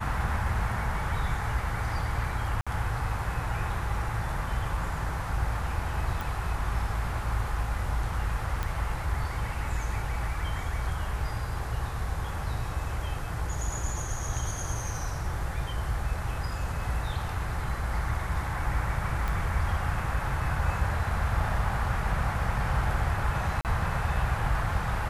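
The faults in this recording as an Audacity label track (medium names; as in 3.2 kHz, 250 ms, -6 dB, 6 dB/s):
2.610000	2.670000	dropout 56 ms
6.210000	6.210000	pop
8.630000	8.630000	pop -17 dBFS
19.280000	19.280000	pop
23.610000	23.650000	dropout 38 ms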